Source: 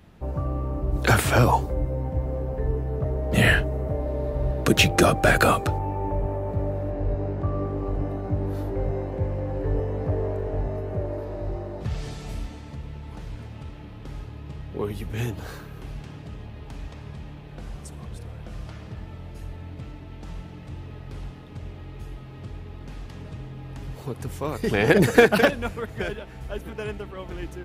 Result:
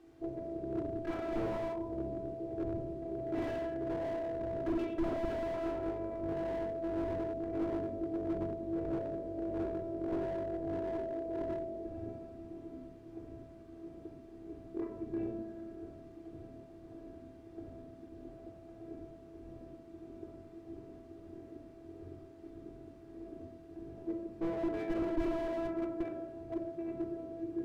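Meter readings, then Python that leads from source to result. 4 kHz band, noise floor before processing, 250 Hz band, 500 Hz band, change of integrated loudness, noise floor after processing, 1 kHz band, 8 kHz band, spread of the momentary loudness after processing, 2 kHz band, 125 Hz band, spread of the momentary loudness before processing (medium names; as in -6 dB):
under -25 dB, -41 dBFS, -7.5 dB, -10.5 dB, -13.5 dB, -54 dBFS, -15.0 dB, under -30 dB, 16 LU, -26.0 dB, -21.5 dB, 21 LU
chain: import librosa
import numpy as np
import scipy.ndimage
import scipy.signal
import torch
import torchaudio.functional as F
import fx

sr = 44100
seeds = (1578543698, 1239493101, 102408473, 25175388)

p1 = fx.wiener(x, sr, points=41)
p2 = fx.tremolo_shape(p1, sr, shape='triangle', hz=1.6, depth_pct=70)
p3 = fx.air_absorb(p2, sr, metres=330.0)
p4 = fx.robotise(p3, sr, hz=332.0)
p5 = 10.0 ** (-21.5 / 20.0) * np.tanh(p4 / 10.0 ** (-21.5 / 20.0))
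p6 = p4 + F.gain(torch.from_numpy(p5), -7.0).numpy()
p7 = fx.rider(p6, sr, range_db=4, speed_s=0.5)
p8 = fx.quant_dither(p7, sr, seeds[0], bits=10, dither='triangular')
p9 = fx.bandpass_q(p8, sr, hz=440.0, q=0.76)
p10 = fx.low_shelf(p9, sr, hz=320.0, db=-5.0)
p11 = fx.room_shoebox(p10, sr, seeds[1], volume_m3=2600.0, walls='furnished', distance_m=3.7)
y = fx.slew_limit(p11, sr, full_power_hz=11.0)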